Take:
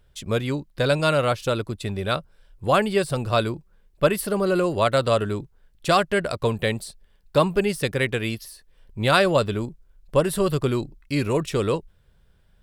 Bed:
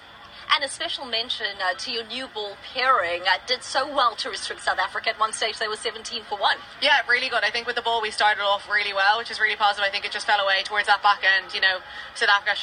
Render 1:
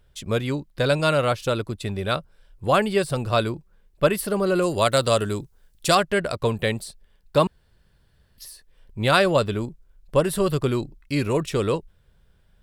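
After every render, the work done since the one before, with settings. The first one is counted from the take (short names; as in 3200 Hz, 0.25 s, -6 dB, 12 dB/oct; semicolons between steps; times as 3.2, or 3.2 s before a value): 4.62–5.95 tone controls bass 0 dB, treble +10 dB; 7.47–8.38 room tone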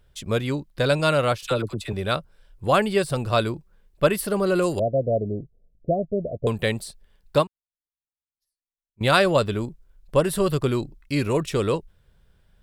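1.38–1.93 dispersion lows, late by 46 ms, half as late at 890 Hz; 4.79–6.47 rippled Chebyshev low-pass 700 Hz, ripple 3 dB; 7.38–9.01 upward expander 2.5:1, over -48 dBFS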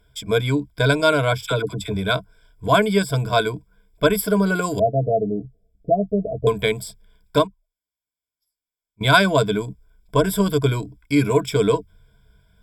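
ripple EQ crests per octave 1.7, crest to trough 18 dB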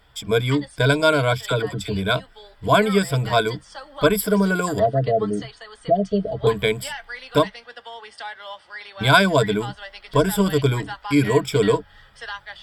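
add bed -14.5 dB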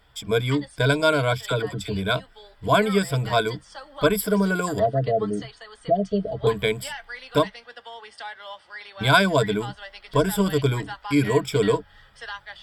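gain -2.5 dB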